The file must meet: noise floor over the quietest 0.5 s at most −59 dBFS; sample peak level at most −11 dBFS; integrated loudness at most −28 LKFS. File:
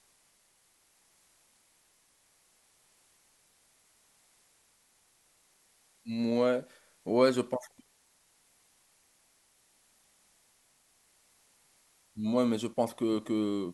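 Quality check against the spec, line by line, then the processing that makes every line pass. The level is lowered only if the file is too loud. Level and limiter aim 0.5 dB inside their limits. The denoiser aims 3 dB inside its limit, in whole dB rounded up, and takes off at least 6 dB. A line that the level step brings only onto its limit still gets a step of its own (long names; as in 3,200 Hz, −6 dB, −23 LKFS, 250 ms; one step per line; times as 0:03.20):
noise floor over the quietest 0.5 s −69 dBFS: in spec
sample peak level −12.5 dBFS: in spec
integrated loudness −30.5 LKFS: in spec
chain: no processing needed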